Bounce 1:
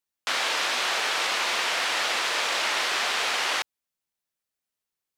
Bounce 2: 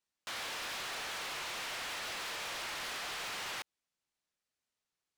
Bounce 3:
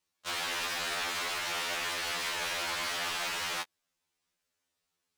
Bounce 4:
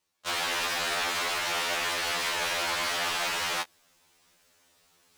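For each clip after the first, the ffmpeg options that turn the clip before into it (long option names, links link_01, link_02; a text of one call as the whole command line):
ffmpeg -i in.wav -af "lowpass=7900,alimiter=level_in=1dB:limit=-24dB:level=0:latency=1:release=58,volume=-1dB,asoftclip=type=hard:threshold=-39dB" out.wav
ffmpeg -i in.wav -af "afftfilt=real='re*2*eq(mod(b,4),0)':imag='im*2*eq(mod(b,4),0)':win_size=2048:overlap=0.75,volume=8.5dB" out.wav
ffmpeg -i in.wav -af "equalizer=frequency=650:width_type=o:width=1.5:gain=2.5,areverse,acompressor=mode=upward:threshold=-55dB:ratio=2.5,areverse,volume=4dB" out.wav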